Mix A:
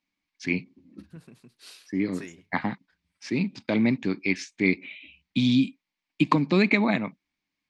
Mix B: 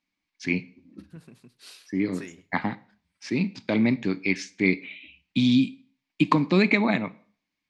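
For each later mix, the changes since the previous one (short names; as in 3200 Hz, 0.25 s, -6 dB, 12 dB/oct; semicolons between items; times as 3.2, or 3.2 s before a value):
reverb: on, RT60 0.45 s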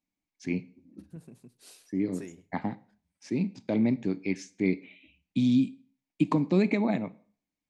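first voice -3.0 dB; master: add band shelf 2300 Hz -9.5 dB 2.6 oct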